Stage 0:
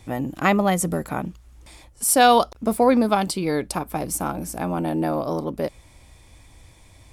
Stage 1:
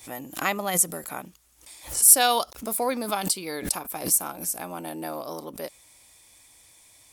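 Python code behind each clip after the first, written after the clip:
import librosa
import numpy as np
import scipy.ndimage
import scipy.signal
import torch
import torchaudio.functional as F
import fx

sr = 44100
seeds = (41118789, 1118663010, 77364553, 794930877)

y = fx.riaa(x, sr, side='recording')
y = fx.pre_swell(y, sr, db_per_s=140.0)
y = y * librosa.db_to_amplitude(-7.0)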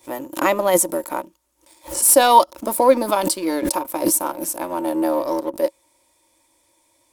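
y = fx.peak_eq(x, sr, hz=160.0, db=-5.0, octaves=0.69)
y = fx.leveller(y, sr, passes=2)
y = fx.small_body(y, sr, hz=(330.0, 550.0, 920.0), ring_ms=45, db=17)
y = y * librosa.db_to_amplitude(-5.0)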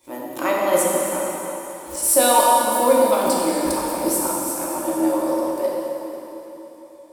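y = fx.rev_plate(x, sr, seeds[0], rt60_s=3.6, hf_ratio=0.9, predelay_ms=0, drr_db=-4.5)
y = y * librosa.db_to_amplitude(-6.5)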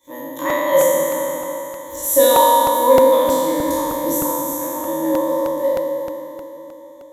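y = fx.spec_trails(x, sr, decay_s=1.66)
y = fx.ripple_eq(y, sr, per_octave=1.1, db=17)
y = fx.buffer_crackle(y, sr, first_s=0.5, period_s=0.31, block=64, kind='repeat')
y = y * librosa.db_to_amplitude(-6.0)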